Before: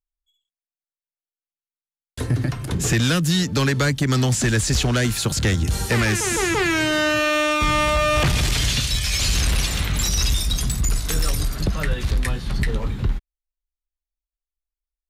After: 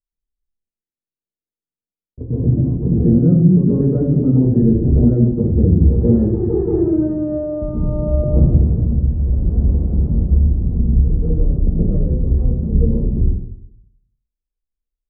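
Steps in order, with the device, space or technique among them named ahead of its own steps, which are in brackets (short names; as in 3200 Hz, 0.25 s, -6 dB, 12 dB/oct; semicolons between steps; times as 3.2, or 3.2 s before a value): next room (LPF 450 Hz 24 dB/oct; reverb RT60 0.75 s, pre-delay 0.118 s, DRR -10 dB); gain -1.5 dB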